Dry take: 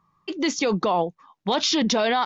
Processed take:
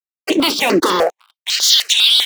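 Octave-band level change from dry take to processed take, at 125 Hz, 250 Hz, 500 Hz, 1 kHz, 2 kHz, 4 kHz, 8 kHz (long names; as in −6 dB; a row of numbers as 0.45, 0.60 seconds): −1.0 dB, +4.5 dB, +5.0 dB, +3.0 dB, +9.0 dB, +15.5 dB, can't be measured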